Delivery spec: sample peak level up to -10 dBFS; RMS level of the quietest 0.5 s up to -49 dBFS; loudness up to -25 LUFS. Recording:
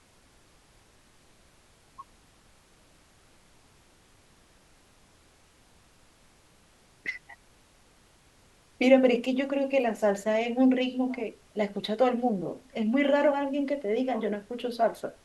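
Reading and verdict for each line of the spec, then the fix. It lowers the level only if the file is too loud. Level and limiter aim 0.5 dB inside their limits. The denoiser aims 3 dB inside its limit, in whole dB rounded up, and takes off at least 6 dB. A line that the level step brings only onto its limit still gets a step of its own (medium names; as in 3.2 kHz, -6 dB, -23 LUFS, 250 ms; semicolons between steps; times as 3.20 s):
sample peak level -7.0 dBFS: fail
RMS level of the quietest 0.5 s -60 dBFS: pass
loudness -27.0 LUFS: pass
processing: peak limiter -10.5 dBFS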